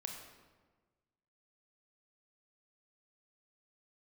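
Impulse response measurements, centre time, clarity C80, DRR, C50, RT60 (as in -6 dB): 43 ms, 6.0 dB, 2.0 dB, 4.0 dB, 1.4 s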